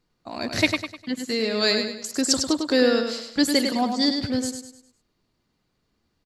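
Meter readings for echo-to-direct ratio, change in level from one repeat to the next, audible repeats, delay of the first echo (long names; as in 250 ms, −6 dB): −5.5 dB, −8.0 dB, 4, 101 ms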